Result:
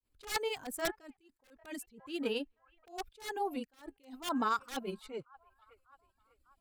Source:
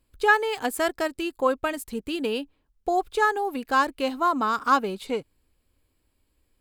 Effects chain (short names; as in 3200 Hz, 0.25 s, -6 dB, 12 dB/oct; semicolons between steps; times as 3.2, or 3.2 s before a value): on a send: band-limited delay 0.59 s, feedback 32%, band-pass 1300 Hz, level -22.5 dB; on the sum: reverb removal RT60 0.73 s; wrapped overs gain 15.5 dB; grains 0.1 s, grains 19/s, spray 12 ms, pitch spread up and down by 0 st; attack slew limiter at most 180 dB/s; gain -4 dB